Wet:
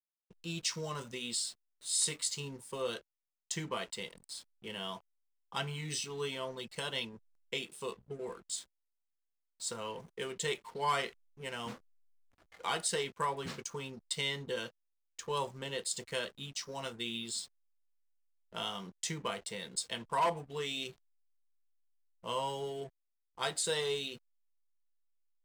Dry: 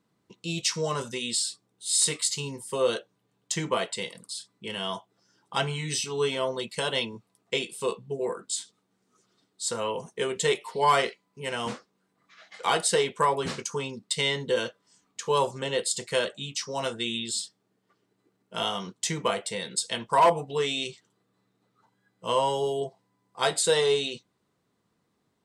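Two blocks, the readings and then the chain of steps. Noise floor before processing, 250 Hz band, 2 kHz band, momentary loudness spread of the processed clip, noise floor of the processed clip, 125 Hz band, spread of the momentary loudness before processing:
-75 dBFS, -9.0 dB, -8.5 dB, 11 LU, -84 dBFS, -8.0 dB, 13 LU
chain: hysteresis with a dead band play -41 dBFS; dynamic bell 540 Hz, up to -5 dB, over -35 dBFS, Q 0.75; trim -7.5 dB

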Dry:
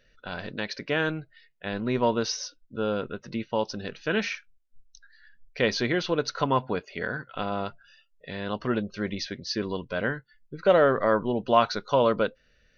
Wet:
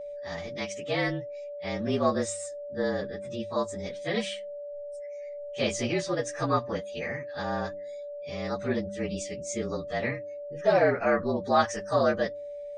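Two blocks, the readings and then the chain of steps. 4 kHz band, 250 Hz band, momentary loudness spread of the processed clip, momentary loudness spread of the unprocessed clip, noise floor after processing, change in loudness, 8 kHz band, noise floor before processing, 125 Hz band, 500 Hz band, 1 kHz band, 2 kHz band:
-4.5 dB, -2.0 dB, 14 LU, 13 LU, -39 dBFS, -2.5 dB, no reading, -65 dBFS, -1.0 dB, -1.5 dB, -2.5 dB, -2.5 dB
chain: frequency axis rescaled in octaves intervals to 112%; de-hum 100.2 Hz, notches 3; whistle 580 Hz -36 dBFS

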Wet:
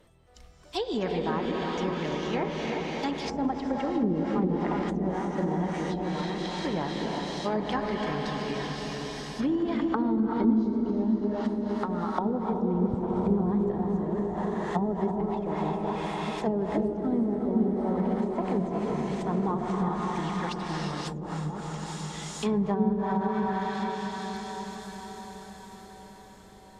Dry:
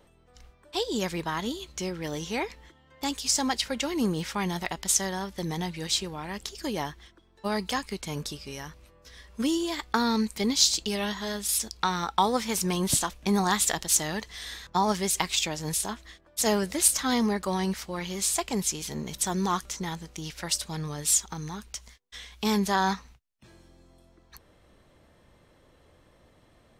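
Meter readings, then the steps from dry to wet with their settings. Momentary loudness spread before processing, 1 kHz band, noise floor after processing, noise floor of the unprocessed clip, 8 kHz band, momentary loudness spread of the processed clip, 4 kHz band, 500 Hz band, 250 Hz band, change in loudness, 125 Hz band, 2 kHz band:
13 LU, -0.5 dB, -49 dBFS, -61 dBFS, under -20 dB, 9 LU, -10.5 dB, +3.5 dB, +4.0 dB, -1.5 dB, +3.5 dB, -4.0 dB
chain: coarse spectral quantiser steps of 15 dB; on a send: echo that smears into a reverb 559 ms, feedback 57%, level -4 dB; on the sum: gated-style reverb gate 400 ms rising, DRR 1.5 dB; low-pass that closes with the level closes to 430 Hz, closed at -19.5 dBFS

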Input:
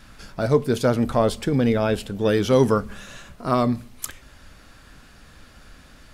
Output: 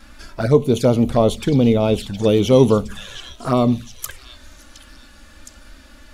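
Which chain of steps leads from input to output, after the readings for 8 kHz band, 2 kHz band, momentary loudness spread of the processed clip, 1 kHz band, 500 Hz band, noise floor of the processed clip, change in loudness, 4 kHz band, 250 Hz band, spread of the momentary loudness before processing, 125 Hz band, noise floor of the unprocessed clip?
+3.0 dB, -1.5 dB, 19 LU, +1.0 dB, +4.5 dB, -45 dBFS, +4.5 dB, +5.0 dB, +5.0 dB, 16 LU, +5.5 dB, -50 dBFS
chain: touch-sensitive flanger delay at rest 3.9 ms, full sweep at -17.5 dBFS; repeats whose band climbs or falls 715 ms, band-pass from 3.8 kHz, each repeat 0.7 oct, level -5.5 dB; trim +5.5 dB

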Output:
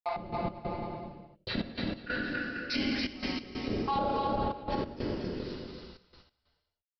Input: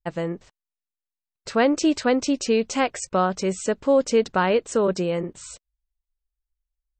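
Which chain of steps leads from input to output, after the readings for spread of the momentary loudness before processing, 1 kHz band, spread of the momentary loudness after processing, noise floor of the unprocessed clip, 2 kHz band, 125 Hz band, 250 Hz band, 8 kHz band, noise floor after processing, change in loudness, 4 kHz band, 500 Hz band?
13 LU, -7.0 dB, 13 LU, under -85 dBFS, -6.0 dB, -5.5 dB, -10.0 dB, under -25 dB, -84 dBFS, -11.5 dB, -4.5 dB, -15.0 dB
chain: random holes in the spectrogram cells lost 37%; crossover distortion -42.5 dBFS; inverted gate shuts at -21 dBFS, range -32 dB; bass shelf 120 Hz +9.5 dB; reverb removal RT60 0.63 s; on a send: bouncing-ball echo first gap 280 ms, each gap 0.75×, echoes 5; on the sum: gated-style reverb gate 430 ms falling, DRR -6.5 dB; resampled via 11.025 kHz; peak limiter -25.5 dBFS, peak gain reduction 11 dB; gate -60 dBFS, range -6 dB; trance gate "x.x.xxxxx" 93 bpm -12 dB; trim +4 dB

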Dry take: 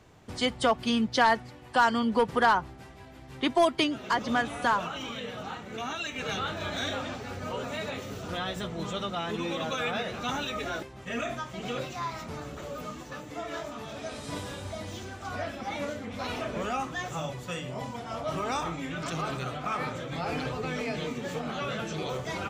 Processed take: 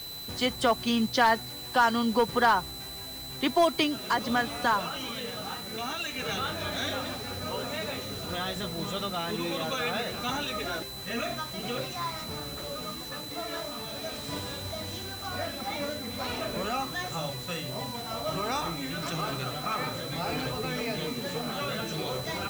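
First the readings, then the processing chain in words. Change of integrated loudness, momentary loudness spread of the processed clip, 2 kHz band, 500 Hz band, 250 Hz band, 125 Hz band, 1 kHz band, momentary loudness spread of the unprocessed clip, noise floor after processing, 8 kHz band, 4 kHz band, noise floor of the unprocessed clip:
+0.5 dB, 11 LU, 0.0 dB, 0.0 dB, 0.0 dB, 0.0 dB, 0.0 dB, 14 LU, -40 dBFS, +4.0 dB, +3.5 dB, -47 dBFS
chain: whistle 4 kHz -40 dBFS; bit crusher 7-bit

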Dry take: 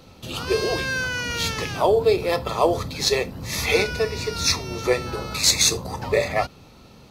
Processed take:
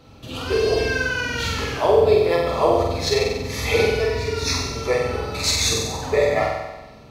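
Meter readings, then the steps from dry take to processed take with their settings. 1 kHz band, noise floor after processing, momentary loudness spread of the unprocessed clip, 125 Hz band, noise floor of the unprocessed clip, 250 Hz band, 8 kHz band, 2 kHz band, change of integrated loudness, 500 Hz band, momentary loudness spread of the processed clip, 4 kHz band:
+2.0 dB, -44 dBFS, 8 LU, +3.0 dB, -48 dBFS, +1.5 dB, -3.0 dB, +1.0 dB, +1.5 dB, +3.5 dB, 8 LU, -1.0 dB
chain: treble shelf 4.9 kHz -8 dB; comb of notches 180 Hz; flutter echo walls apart 8 m, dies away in 1.1 s

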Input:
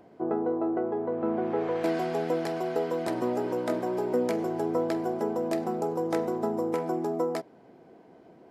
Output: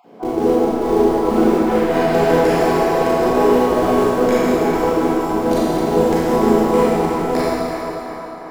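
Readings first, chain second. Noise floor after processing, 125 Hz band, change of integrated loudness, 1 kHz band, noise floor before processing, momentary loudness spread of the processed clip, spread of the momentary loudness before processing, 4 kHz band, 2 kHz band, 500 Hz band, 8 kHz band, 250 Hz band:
-31 dBFS, +14.5 dB, +13.0 dB, +15.0 dB, -55 dBFS, 6 LU, 2 LU, +16.0 dB, +15.5 dB, +13.0 dB, +16.0 dB, +13.0 dB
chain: random holes in the spectrogram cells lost 21%; high-pass 140 Hz 24 dB/octave; in parallel at -11 dB: Schmitt trigger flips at -29.5 dBFS; on the sum: trance gate "xxx.xx.x.xxx.x" 166 bpm; on a send: band-passed feedback delay 355 ms, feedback 71%, band-pass 1.1 kHz, level -5.5 dB; on the sum: Schroeder reverb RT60 2.6 s, combs from 28 ms, DRR -9 dB; trim +7 dB

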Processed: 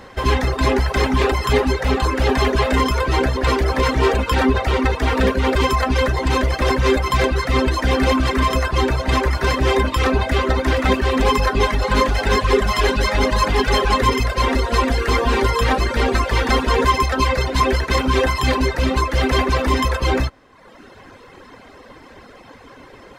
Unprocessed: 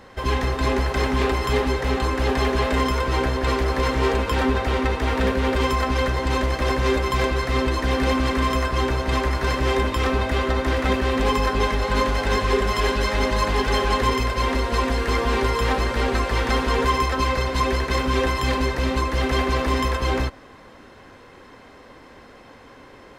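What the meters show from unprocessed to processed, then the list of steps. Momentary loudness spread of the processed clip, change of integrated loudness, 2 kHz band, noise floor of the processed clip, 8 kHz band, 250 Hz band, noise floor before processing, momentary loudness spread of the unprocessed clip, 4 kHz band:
2 LU, +4.0 dB, +3.5 dB, -44 dBFS, +4.0 dB, +3.5 dB, -46 dBFS, 2 LU, +4.0 dB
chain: reverb removal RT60 0.99 s; trim +6 dB

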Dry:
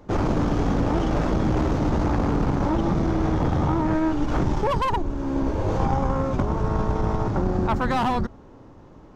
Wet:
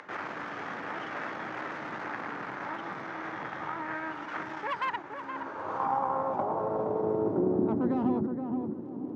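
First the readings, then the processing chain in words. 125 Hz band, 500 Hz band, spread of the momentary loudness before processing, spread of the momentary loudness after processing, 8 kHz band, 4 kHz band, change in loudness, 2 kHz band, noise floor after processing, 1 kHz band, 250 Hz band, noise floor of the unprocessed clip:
-19.5 dB, -6.0 dB, 2 LU, 10 LU, no reading, -10.0 dB, -9.0 dB, -1.5 dB, -41 dBFS, -6.0 dB, -9.5 dB, -47 dBFS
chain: high-pass 99 Hz 24 dB/octave; upward compressor, threshold -26 dBFS; crackle 18 per s -32 dBFS; band-pass sweep 1.8 kHz -> 290 Hz, 5.19–7.60 s; on a send: filtered feedback delay 470 ms, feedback 33%, low-pass 1.1 kHz, level -5 dB; on the sum: trim +2 dB

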